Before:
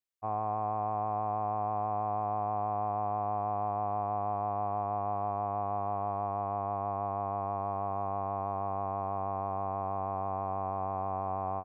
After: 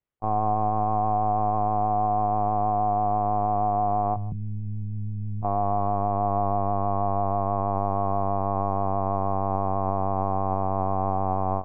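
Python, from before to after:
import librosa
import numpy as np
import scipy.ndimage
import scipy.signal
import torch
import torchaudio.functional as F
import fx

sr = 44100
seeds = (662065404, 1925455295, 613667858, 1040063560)

y = scipy.signal.sosfilt(scipy.signal.butter(2, 2300.0, 'lowpass', fs=sr, output='sos'), x)
y = fx.low_shelf(y, sr, hz=450.0, db=9.5)
y = fx.cheby2_bandstop(y, sr, low_hz=420.0, high_hz=1600.0, order=4, stop_db=50, at=(4.14, 5.43), fade=0.02)
y = y + 10.0 ** (-21.5 / 20.0) * np.pad(y, (int(159 * sr / 1000.0), 0))[:len(y)]
y = fx.lpc_vocoder(y, sr, seeds[0], excitation='pitch_kept', order=16)
y = F.gain(torch.from_numpy(y), 5.5).numpy()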